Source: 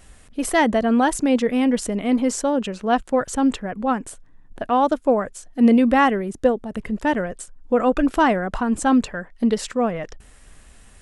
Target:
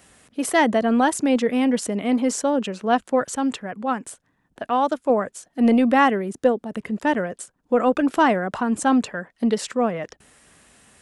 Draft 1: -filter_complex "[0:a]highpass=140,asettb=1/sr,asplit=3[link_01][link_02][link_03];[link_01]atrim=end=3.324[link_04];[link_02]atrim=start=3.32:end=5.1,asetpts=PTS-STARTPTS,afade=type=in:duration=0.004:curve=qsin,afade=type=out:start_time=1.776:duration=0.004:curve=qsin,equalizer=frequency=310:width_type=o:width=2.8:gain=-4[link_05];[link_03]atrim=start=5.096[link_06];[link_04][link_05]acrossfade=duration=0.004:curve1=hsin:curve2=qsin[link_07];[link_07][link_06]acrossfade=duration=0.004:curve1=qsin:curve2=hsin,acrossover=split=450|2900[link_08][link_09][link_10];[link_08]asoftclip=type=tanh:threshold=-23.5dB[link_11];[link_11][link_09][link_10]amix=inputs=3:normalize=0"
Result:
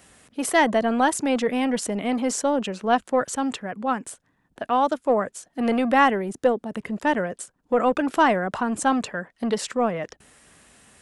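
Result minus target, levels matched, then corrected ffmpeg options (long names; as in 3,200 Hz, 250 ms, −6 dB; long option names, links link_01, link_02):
soft clipping: distortion +12 dB
-filter_complex "[0:a]highpass=140,asettb=1/sr,asplit=3[link_01][link_02][link_03];[link_01]atrim=end=3.324[link_04];[link_02]atrim=start=3.32:end=5.1,asetpts=PTS-STARTPTS,afade=type=in:duration=0.004:curve=qsin,afade=type=out:start_time=1.776:duration=0.004:curve=qsin,equalizer=frequency=310:width_type=o:width=2.8:gain=-4[link_05];[link_03]atrim=start=5.096[link_06];[link_04][link_05]acrossfade=duration=0.004:curve1=hsin:curve2=qsin[link_07];[link_07][link_06]acrossfade=duration=0.004:curve1=qsin:curve2=hsin,acrossover=split=450|2900[link_08][link_09][link_10];[link_08]asoftclip=type=tanh:threshold=-12dB[link_11];[link_11][link_09][link_10]amix=inputs=3:normalize=0"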